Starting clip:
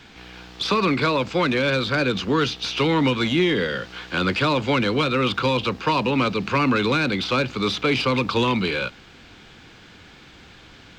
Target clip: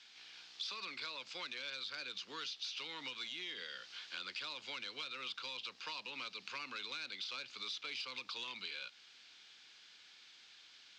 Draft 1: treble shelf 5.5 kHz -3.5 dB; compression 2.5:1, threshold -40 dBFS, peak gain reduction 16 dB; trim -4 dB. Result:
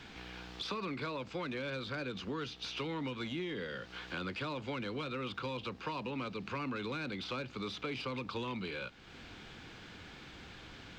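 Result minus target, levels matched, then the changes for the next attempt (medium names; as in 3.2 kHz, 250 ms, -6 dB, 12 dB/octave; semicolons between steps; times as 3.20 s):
4 kHz band -6.0 dB
add first: band-pass filter 5 kHz, Q 1.4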